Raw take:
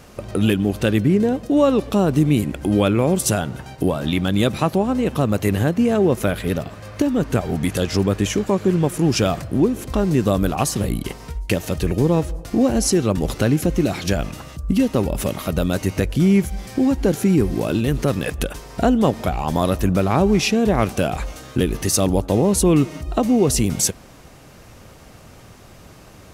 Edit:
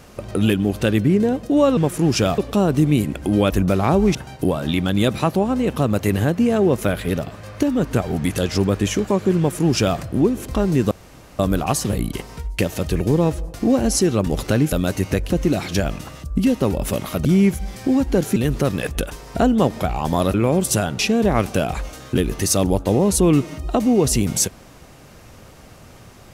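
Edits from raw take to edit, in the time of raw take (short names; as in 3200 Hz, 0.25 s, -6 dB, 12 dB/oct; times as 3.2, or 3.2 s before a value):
2.89–3.54 swap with 19.77–20.42
8.77–9.38 copy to 1.77
10.3 insert room tone 0.48 s
15.58–16.16 move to 13.63
17.27–17.79 cut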